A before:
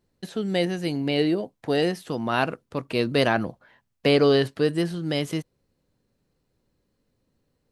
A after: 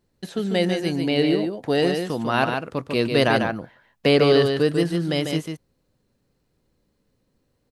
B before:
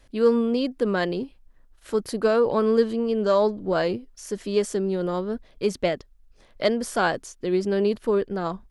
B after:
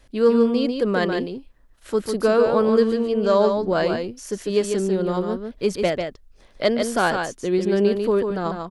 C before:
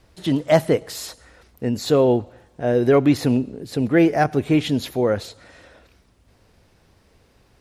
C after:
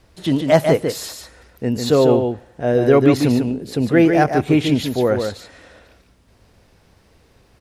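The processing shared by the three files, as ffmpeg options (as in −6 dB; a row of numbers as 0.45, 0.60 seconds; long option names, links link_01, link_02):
-af "aecho=1:1:146:0.531,volume=2dB"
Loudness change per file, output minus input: +3.0, +3.0, +3.0 LU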